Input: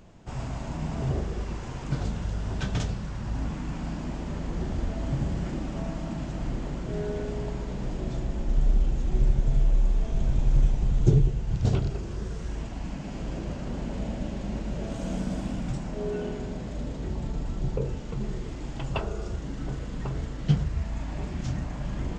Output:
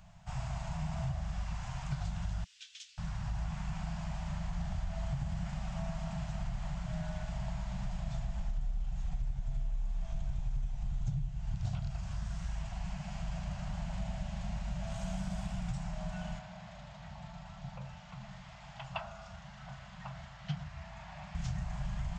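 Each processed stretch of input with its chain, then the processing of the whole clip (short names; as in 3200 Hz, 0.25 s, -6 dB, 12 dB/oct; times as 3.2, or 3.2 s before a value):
2.44–2.98 inverse Chebyshev high-pass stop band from 630 Hz, stop band 70 dB + tilt -2.5 dB/oct
16.39–21.35 HPF 390 Hz 6 dB/oct + air absorption 110 m
whole clip: elliptic band-stop 180–670 Hz, stop band 50 dB; compressor, threshold -29 dBFS; gain -2.5 dB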